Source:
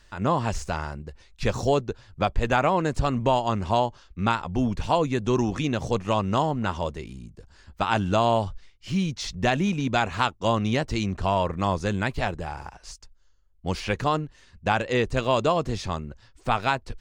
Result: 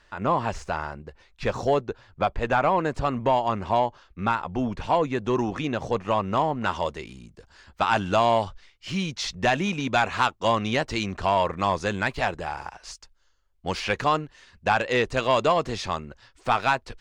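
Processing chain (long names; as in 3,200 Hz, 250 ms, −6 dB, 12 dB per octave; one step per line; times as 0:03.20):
mid-hump overdrive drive 11 dB, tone 1,500 Hz, clips at −7.5 dBFS, from 0:06.61 tone 4,500 Hz
level −1 dB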